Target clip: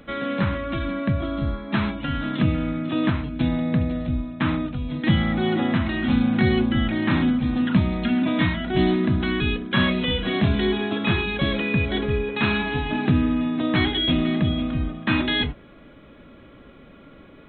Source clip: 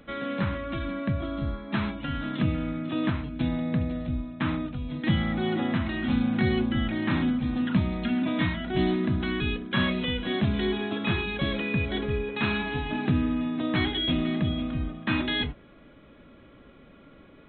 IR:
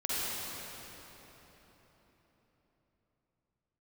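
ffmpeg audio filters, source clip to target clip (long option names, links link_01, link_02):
-filter_complex "[0:a]asettb=1/sr,asplit=3[link_01][link_02][link_03];[link_01]atrim=end=10.084[link_04];[link_02]atrim=start=10.08:end=10.55,asetpts=PTS-STARTPTS,afade=type=in:duration=0.004:curve=qsin,afade=type=out:start_time=0.466:duration=0.004:curve=qsin,asplit=2[link_05][link_06];[link_06]adelay=26,volume=-4.5dB[link_07];[link_05][link_07]amix=inputs=2:normalize=0,atrim=end_sample=20727[link_08];[link_03]atrim=start=10.546[link_09];[link_04][link_08]acrossfade=duration=0.004:curve1=hsin:curve2=qsin[link_10];[link_10][link_09]acrossfade=duration=0.004:curve1=qsin:curve2=hsin,volume=5dB"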